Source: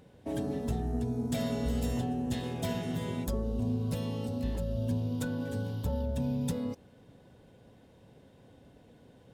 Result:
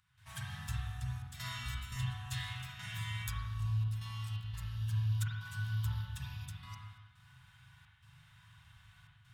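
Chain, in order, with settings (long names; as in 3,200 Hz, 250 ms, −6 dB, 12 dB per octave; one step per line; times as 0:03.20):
elliptic band-stop filter 120–1,200 Hz, stop band 80 dB
gate pattern ".xxxxxx.xx.xxxx" 86 BPM −12 dB
low-shelf EQ 130 Hz −10 dB
speech leveller within 3 dB 2 s
spring reverb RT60 1.2 s, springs 39/46 ms, chirp 75 ms, DRR −4 dB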